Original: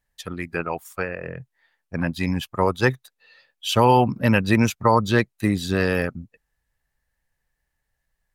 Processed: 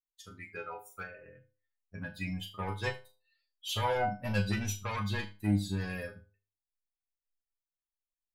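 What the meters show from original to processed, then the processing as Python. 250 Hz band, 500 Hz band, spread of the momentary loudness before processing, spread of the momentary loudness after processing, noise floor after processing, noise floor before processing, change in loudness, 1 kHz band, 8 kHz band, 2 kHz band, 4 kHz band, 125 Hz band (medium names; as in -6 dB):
-14.0 dB, -16.0 dB, 16 LU, 15 LU, under -85 dBFS, -78 dBFS, -13.5 dB, -15.0 dB, -8.0 dB, -12.5 dB, -10.0 dB, -11.0 dB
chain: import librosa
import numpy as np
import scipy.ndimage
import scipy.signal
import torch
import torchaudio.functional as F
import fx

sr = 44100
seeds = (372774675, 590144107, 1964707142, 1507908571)

p1 = fx.bin_expand(x, sr, power=1.5)
p2 = fx.fold_sine(p1, sr, drive_db=10, ceiling_db=-6.5)
p3 = p1 + (p2 * 10.0 ** (-10.5 / 20.0))
p4 = fx.stiff_resonator(p3, sr, f0_hz=100.0, decay_s=0.42, stiffness=0.002)
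p5 = fx.room_flutter(p4, sr, wall_m=6.5, rt60_s=0.26)
y = p5 * 10.0 ** (-4.5 / 20.0)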